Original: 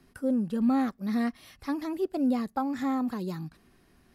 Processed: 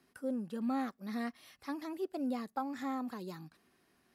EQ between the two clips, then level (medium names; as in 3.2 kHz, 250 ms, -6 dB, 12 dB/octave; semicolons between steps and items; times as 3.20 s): high-pass 350 Hz 6 dB/octave; -5.5 dB